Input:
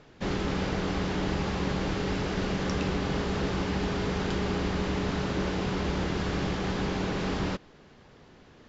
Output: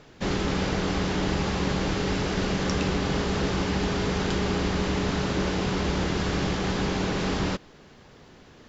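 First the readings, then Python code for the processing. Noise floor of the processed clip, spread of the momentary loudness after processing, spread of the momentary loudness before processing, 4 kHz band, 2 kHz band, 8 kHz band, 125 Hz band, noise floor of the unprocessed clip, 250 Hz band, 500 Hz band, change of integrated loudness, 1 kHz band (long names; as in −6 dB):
−52 dBFS, 1 LU, 1 LU, +5.0 dB, +3.5 dB, can't be measured, +3.0 dB, −55 dBFS, +3.0 dB, +3.0 dB, +3.5 dB, +3.0 dB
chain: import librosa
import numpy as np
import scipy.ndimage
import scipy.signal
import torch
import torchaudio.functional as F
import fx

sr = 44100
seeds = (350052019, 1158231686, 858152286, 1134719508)

y = fx.high_shelf(x, sr, hz=5800.0, db=7.5)
y = y * 10.0 ** (3.0 / 20.0)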